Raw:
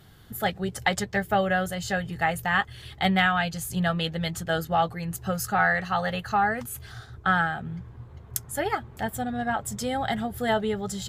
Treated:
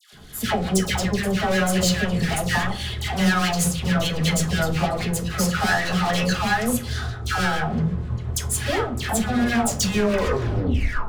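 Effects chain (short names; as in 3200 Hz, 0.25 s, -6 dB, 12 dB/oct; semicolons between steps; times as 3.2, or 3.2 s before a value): tape stop at the end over 1.43 s; LPF 8300 Hz 12 dB/oct; high shelf 3800 Hz +5.5 dB; in parallel at -2 dB: negative-ratio compressor -29 dBFS, ratio -1; on the sum: sample leveller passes 2; hard clip -19 dBFS, distortion -8 dB; rotary speaker horn 6.3 Hz; dispersion lows, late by 0.129 s, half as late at 1200 Hz; on a send at -4 dB: reverb RT60 0.50 s, pre-delay 5 ms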